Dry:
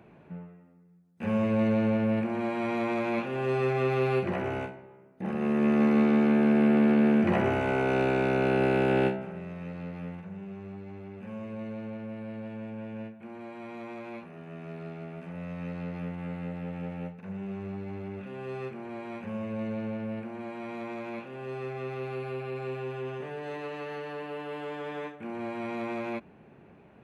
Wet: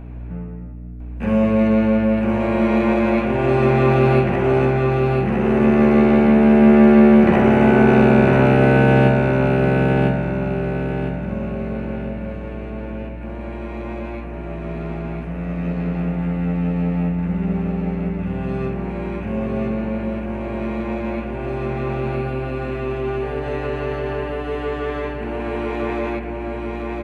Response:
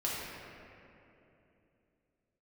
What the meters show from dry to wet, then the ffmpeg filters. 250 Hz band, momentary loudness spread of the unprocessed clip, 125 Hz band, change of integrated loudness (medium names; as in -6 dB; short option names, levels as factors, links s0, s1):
+11.5 dB, 18 LU, +15.0 dB, +11.5 dB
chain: -filter_complex "[0:a]aeval=exprs='val(0)+0.00891*(sin(2*PI*60*n/s)+sin(2*PI*2*60*n/s)/2+sin(2*PI*3*60*n/s)/3+sin(2*PI*4*60*n/s)/4+sin(2*PI*5*60*n/s)/5)':c=same,aecho=1:1:1003|2006|3009|4012|5015:0.668|0.261|0.102|0.0396|0.0155,asplit=2[s0][s1];[1:a]atrim=start_sample=2205,lowpass=3200[s2];[s1][s2]afir=irnorm=-1:irlink=0,volume=0.355[s3];[s0][s3]amix=inputs=2:normalize=0,volume=2"